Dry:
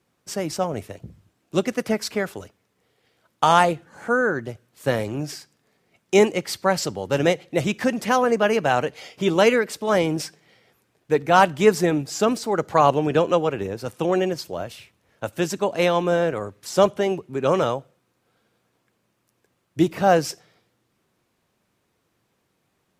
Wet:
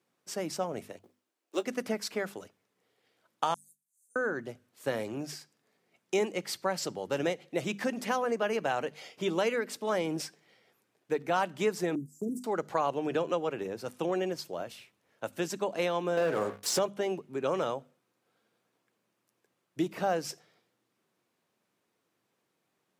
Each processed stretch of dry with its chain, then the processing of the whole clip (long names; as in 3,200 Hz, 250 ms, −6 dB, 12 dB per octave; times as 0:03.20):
0:00.99–0:01.66: mu-law and A-law mismatch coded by A + high-pass filter 300 Hz 24 dB per octave + double-tracking delay 16 ms −11.5 dB
0:03.54–0:04.16: inverse Chebyshev high-pass filter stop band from 2,900 Hz, stop band 60 dB + downward compressor, threshold −43 dBFS
0:11.95–0:12.44: inverse Chebyshev band-stop filter 1,200–2,600 Hz, stop band 80 dB + noise gate −35 dBFS, range −13 dB
0:16.17–0:16.79: hum removal 59.59 Hz, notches 38 + leveller curve on the samples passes 3
whole clip: high-pass filter 170 Hz 12 dB per octave; mains-hum notches 50/100/150/200/250 Hz; downward compressor 2.5 to 1, threshold −20 dBFS; level −7 dB